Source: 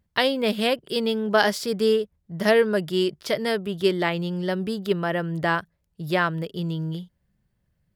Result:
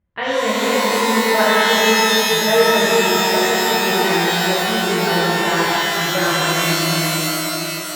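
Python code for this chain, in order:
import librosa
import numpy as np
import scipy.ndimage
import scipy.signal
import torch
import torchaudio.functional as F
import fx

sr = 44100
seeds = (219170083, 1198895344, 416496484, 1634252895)

y = scipy.signal.sosfilt(scipy.signal.butter(4, 2700.0, 'lowpass', fs=sr, output='sos'), x)
y = y + 10.0 ** (-15.0 / 20.0) * np.pad(y, (int(698 * sr / 1000.0), 0))[:len(y)]
y = fx.rev_shimmer(y, sr, seeds[0], rt60_s=3.6, semitones=12, shimmer_db=-2, drr_db=-10.0)
y = F.gain(torch.from_numpy(y), -5.5).numpy()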